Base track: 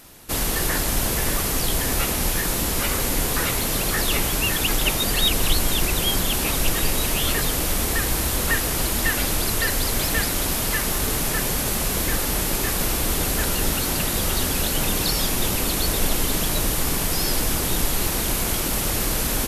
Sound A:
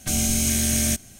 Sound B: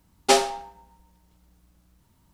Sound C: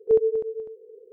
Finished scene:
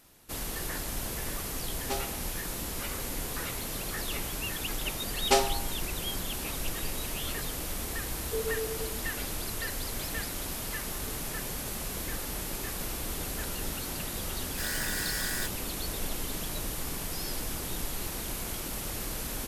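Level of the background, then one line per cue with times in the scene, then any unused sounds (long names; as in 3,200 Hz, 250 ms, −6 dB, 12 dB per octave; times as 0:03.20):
base track −12.5 dB
0:01.61: mix in B −17 dB + adaptive Wiener filter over 9 samples
0:05.02: mix in B −5.5 dB
0:08.24: mix in C −6.5 dB + downward compressor, threshold −24 dBFS
0:14.51: mix in A −13.5 dB + ring modulator with a square carrier 1,700 Hz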